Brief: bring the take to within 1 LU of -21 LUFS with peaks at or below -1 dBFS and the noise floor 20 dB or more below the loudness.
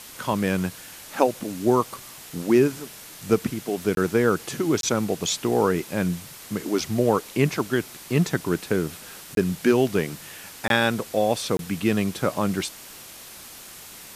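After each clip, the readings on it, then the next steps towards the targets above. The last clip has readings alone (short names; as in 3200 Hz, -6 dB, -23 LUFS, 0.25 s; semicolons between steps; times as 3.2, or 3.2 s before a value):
dropouts 5; longest dropout 22 ms; noise floor -43 dBFS; noise floor target -45 dBFS; loudness -24.5 LUFS; peak -3.0 dBFS; loudness target -21.0 LUFS
-> interpolate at 3.95/4.81/9.35/10.68/11.57, 22 ms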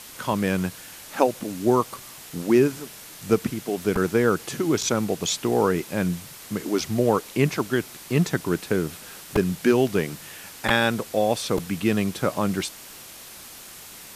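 dropouts 0; noise floor -43 dBFS; noise floor target -44 dBFS
-> denoiser 6 dB, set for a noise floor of -43 dBFS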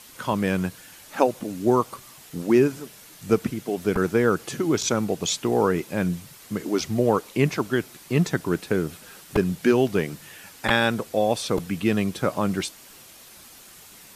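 noise floor -48 dBFS; loudness -24.5 LUFS; peak -3.0 dBFS; loudness target -21.0 LUFS
-> gain +3.5 dB; limiter -1 dBFS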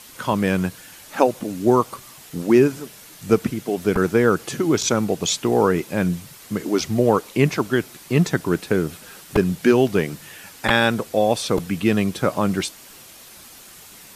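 loudness -21.0 LUFS; peak -1.0 dBFS; noise floor -44 dBFS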